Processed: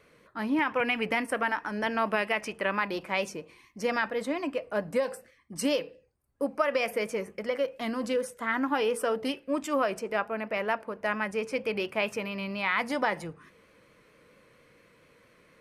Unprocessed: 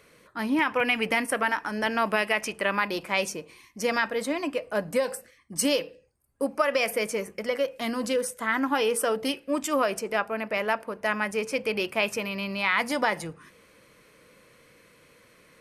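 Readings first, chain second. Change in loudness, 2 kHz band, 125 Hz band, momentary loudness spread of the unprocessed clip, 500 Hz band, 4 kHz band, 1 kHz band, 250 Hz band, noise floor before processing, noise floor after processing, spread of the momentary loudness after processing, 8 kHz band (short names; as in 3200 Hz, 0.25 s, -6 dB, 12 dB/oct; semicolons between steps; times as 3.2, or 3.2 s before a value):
-3.0 dB, -3.5 dB, -2.0 dB, 7 LU, -2.0 dB, -5.5 dB, -2.5 dB, -2.0 dB, -59 dBFS, -62 dBFS, 7 LU, -9.5 dB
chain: high shelf 4400 Hz -9.5 dB; vibrato 4.4 Hz 38 cents; gain -2 dB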